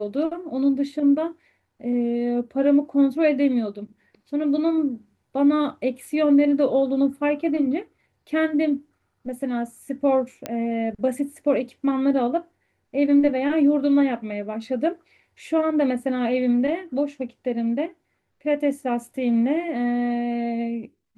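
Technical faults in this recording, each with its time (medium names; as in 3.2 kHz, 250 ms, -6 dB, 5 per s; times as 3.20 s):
10.46 s: pop -13 dBFS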